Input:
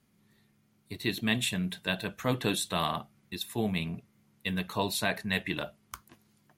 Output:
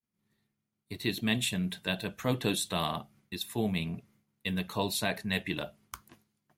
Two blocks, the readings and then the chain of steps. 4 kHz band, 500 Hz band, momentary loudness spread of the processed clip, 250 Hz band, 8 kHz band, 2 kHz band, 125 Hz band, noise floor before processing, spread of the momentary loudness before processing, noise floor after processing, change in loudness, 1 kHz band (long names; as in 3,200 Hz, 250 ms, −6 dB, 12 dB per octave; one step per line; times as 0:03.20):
−0.5 dB, −0.5 dB, 13 LU, 0.0 dB, 0.0 dB, −2.5 dB, 0.0 dB, −69 dBFS, 14 LU, −84 dBFS, −1.0 dB, −2.5 dB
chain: downward expander −57 dBFS
dynamic equaliser 1,400 Hz, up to −4 dB, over −43 dBFS, Q 0.98